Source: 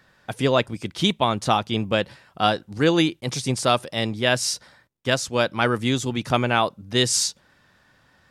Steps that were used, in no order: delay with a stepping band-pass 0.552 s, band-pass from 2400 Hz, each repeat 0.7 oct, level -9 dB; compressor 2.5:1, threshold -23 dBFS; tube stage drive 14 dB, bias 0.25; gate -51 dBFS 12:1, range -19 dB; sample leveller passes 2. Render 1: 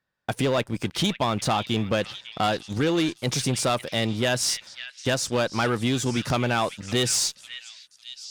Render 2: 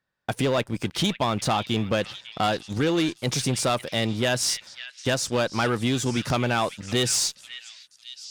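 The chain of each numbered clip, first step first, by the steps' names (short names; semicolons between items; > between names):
sample leveller > gate > compressor > delay with a stepping band-pass > tube stage; sample leveller > gate > compressor > tube stage > delay with a stepping band-pass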